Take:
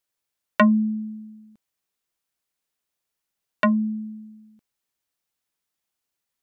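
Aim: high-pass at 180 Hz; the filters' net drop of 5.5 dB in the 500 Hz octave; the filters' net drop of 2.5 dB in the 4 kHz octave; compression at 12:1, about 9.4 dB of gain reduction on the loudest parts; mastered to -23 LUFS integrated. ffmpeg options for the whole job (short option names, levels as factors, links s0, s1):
-af "highpass=180,equalizer=f=500:t=o:g=-7.5,equalizer=f=4000:t=o:g=-3.5,acompressor=threshold=0.0708:ratio=12,volume=2.51"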